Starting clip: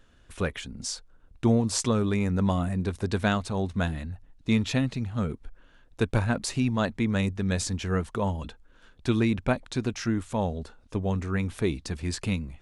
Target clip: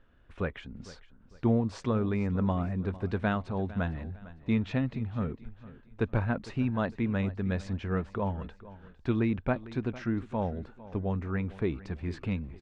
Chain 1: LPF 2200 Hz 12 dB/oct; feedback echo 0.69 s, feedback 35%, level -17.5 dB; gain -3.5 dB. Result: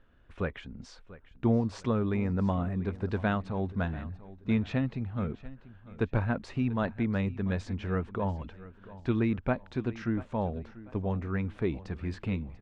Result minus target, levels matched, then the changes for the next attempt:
echo 0.236 s late
change: feedback echo 0.454 s, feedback 35%, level -17.5 dB

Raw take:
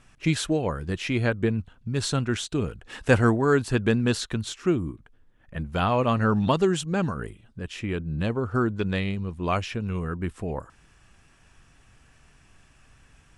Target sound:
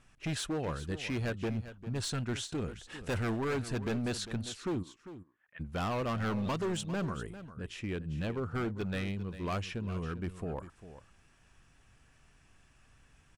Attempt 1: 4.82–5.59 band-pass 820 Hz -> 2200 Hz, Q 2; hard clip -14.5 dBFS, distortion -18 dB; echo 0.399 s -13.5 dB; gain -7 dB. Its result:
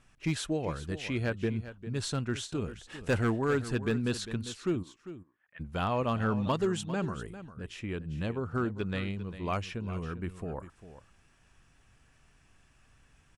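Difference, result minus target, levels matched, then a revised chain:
hard clip: distortion -11 dB
4.82–5.59 band-pass 820 Hz -> 2200 Hz, Q 2; hard clip -23 dBFS, distortion -8 dB; echo 0.399 s -13.5 dB; gain -7 dB

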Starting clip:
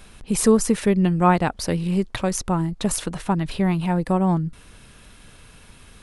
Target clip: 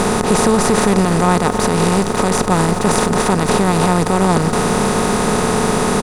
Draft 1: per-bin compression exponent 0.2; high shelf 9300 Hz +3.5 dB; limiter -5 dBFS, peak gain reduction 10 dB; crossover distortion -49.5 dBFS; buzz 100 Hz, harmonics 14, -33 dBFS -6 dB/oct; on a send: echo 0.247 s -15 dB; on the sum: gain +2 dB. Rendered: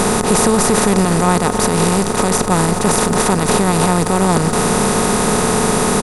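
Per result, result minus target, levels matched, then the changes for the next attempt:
crossover distortion: distortion -10 dB; 8000 Hz band +4.0 dB
change: crossover distortion -40 dBFS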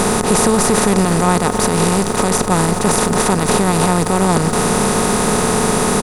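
8000 Hz band +4.0 dB
change: high shelf 9300 Hz -7.5 dB

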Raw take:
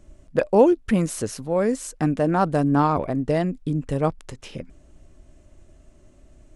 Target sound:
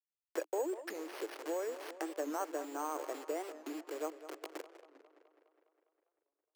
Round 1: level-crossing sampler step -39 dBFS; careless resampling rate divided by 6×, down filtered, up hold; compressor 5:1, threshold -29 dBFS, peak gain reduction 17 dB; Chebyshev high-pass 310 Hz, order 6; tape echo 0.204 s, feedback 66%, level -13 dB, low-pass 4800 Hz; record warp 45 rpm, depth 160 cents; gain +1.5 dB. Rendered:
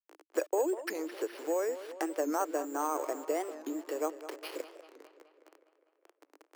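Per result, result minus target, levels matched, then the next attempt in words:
level-crossing sampler: distortion -13 dB; compressor: peak gain reduction -6 dB
level-crossing sampler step -27.5 dBFS; careless resampling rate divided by 6×, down filtered, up hold; compressor 5:1, threshold -29 dBFS, peak gain reduction 17 dB; Chebyshev high-pass 310 Hz, order 6; tape echo 0.204 s, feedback 66%, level -13 dB, low-pass 4800 Hz; record warp 45 rpm, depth 160 cents; gain +1.5 dB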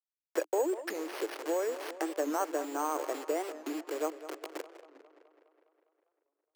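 compressor: peak gain reduction -6 dB
level-crossing sampler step -27.5 dBFS; careless resampling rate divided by 6×, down filtered, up hold; compressor 5:1, threshold -36.5 dBFS, peak gain reduction 23 dB; Chebyshev high-pass 310 Hz, order 6; tape echo 0.204 s, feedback 66%, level -13 dB, low-pass 4800 Hz; record warp 45 rpm, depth 160 cents; gain +1.5 dB

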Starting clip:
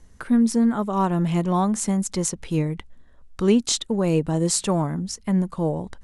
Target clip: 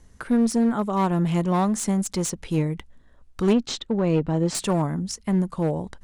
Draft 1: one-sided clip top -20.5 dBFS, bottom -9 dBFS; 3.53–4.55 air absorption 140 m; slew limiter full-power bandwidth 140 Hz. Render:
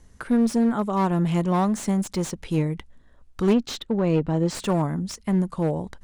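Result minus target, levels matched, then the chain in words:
slew limiter: distortion +6 dB
one-sided clip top -20.5 dBFS, bottom -9 dBFS; 3.53–4.55 air absorption 140 m; slew limiter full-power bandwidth 426.5 Hz

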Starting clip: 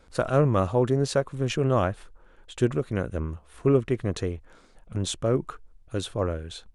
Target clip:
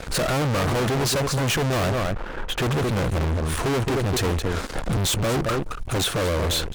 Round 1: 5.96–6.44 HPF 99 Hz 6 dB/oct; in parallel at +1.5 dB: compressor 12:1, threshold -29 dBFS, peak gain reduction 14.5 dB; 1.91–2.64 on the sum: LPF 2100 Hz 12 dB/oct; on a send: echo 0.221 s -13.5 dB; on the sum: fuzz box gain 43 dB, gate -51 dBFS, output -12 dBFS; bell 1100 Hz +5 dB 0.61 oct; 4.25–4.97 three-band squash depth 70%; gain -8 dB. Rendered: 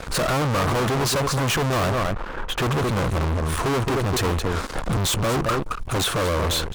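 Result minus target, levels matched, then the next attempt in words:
compressor: peak gain reduction -6.5 dB; 1000 Hz band +2.5 dB
5.96–6.44 HPF 99 Hz 6 dB/oct; in parallel at +1.5 dB: compressor 12:1, threshold -36 dBFS, peak gain reduction 21 dB; 1.91–2.64 on the sum: LPF 2100 Hz 12 dB/oct; on a send: echo 0.221 s -13.5 dB; on the sum: fuzz box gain 43 dB, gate -51 dBFS, output -12 dBFS; 4.25–4.97 three-band squash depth 70%; gain -8 dB

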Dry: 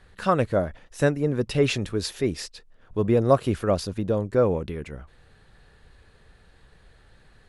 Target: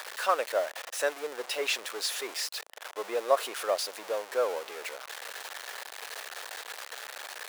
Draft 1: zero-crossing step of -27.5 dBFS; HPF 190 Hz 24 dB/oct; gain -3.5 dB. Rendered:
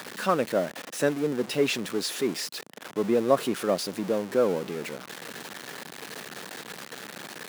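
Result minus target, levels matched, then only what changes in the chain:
250 Hz band +16.0 dB
change: HPF 550 Hz 24 dB/oct

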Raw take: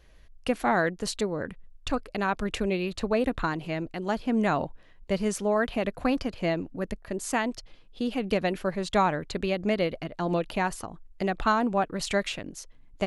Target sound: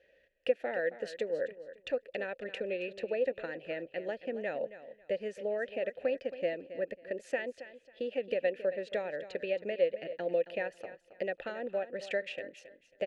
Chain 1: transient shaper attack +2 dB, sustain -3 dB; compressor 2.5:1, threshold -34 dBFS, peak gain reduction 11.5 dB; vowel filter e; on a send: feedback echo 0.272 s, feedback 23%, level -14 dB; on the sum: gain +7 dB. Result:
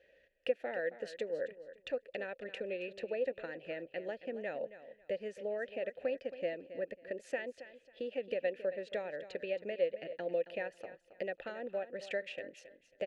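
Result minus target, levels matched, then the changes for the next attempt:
compressor: peak gain reduction +4 dB
change: compressor 2.5:1, threshold -27.5 dBFS, peak gain reduction 7.5 dB

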